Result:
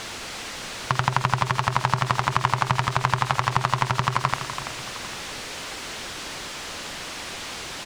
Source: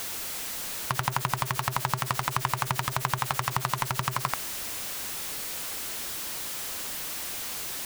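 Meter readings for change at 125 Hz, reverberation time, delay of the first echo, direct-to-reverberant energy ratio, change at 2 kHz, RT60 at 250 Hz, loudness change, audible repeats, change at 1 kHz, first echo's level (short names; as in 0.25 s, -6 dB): +7.0 dB, none, 47 ms, none, +6.0 dB, none, +4.0 dB, 3, +6.5 dB, -16.0 dB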